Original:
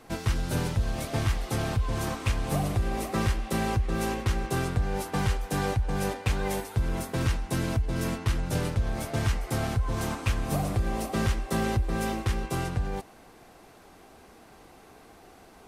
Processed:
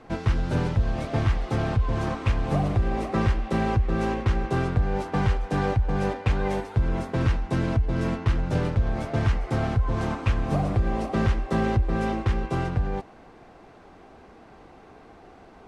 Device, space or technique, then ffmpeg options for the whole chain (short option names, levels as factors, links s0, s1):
through cloth: -af "lowpass=7100,highshelf=f=3600:g=-13.5,volume=1.58"